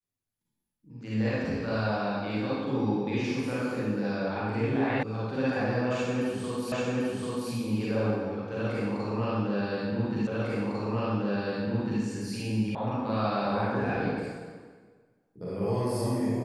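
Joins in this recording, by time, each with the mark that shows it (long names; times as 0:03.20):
0:05.03: cut off before it has died away
0:06.72: the same again, the last 0.79 s
0:10.27: the same again, the last 1.75 s
0:12.75: cut off before it has died away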